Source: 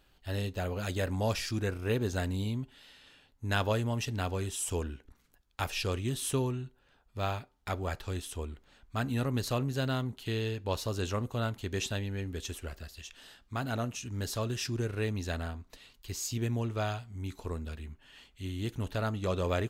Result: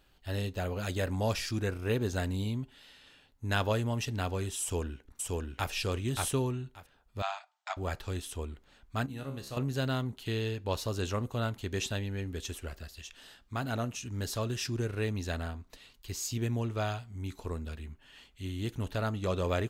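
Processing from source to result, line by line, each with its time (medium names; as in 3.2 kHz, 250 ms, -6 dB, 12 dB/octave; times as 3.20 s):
4.61–5.70 s: echo throw 580 ms, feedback 15%, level -1.5 dB
7.22–7.77 s: brick-wall FIR band-pass 610–8500 Hz
9.06–9.57 s: feedback comb 68 Hz, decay 0.56 s, mix 80%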